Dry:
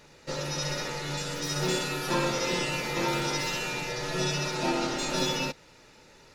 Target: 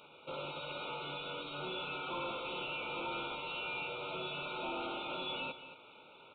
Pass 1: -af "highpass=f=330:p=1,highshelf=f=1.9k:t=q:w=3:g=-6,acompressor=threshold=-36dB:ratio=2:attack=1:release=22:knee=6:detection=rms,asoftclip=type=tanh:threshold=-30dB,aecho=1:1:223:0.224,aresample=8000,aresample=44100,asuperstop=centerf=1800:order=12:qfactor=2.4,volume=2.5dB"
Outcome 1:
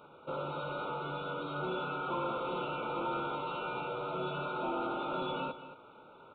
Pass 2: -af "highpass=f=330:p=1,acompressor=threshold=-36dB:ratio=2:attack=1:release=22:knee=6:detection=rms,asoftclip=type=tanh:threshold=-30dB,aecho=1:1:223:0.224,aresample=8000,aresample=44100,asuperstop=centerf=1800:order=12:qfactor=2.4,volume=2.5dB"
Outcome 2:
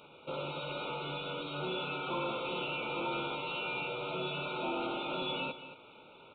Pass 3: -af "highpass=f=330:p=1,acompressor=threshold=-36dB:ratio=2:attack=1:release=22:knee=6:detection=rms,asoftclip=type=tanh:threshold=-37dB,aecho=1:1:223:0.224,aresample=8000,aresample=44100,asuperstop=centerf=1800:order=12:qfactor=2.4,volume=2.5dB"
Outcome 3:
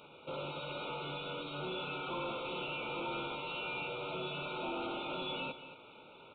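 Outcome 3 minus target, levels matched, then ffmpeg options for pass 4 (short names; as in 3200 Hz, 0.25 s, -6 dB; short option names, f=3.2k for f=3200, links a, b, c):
250 Hz band +3.0 dB
-af "highpass=f=690:p=1,acompressor=threshold=-36dB:ratio=2:attack=1:release=22:knee=6:detection=rms,asoftclip=type=tanh:threshold=-37dB,aecho=1:1:223:0.224,aresample=8000,aresample=44100,asuperstop=centerf=1800:order=12:qfactor=2.4,volume=2.5dB"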